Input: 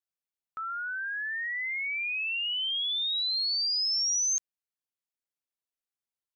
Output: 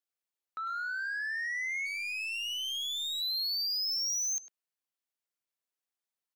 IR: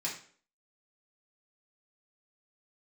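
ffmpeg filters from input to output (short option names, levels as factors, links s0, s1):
-filter_complex "[0:a]asplit=3[s0][s1][s2];[s0]afade=t=out:st=1.85:d=0.02[s3];[s1]aeval=exprs='if(lt(val(0),0),0.251*val(0),val(0))':c=same,afade=t=in:st=1.85:d=0.02,afade=t=out:st=3.2:d=0.02[s4];[s2]afade=t=in:st=3.2:d=0.02[s5];[s3][s4][s5]amix=inputs=3:normalize=0,highpass=210,asoftclip=type=tanh:threshold=0.0316,asplit=2[s6][s7];[s7]adelay=100,highpass=300,lowpass=3400,asoftclip=type=hard:threshold=0.0112,volume=0.447[s8];[s6][s8]amix=inputs=2:normalize=0"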